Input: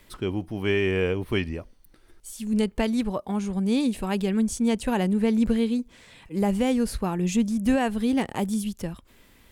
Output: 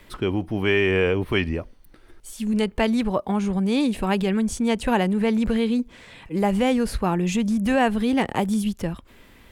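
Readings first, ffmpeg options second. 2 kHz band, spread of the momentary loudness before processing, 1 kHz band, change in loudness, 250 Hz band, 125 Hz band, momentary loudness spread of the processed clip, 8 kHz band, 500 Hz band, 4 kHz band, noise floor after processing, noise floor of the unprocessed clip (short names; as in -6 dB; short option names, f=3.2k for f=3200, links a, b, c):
+6.0 dB, 10 LU, +6.0 dB, +2.5 dB, +2.0 dB, +3.0 dB, 8 LU, 0.0 dB, +3.5 dB, +4.5 dB, -51 dBFS, -57 dBFS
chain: -filter_complex "[0:a]bass=f=250:g=-1,treble=f=4k:g=-7,acrossover=split=540[a][b];[a]alimiter=limit=-24dB:level=0:latency=1[c];[c][b]amix=inputs=2:normalize=0,volume=6.5dB"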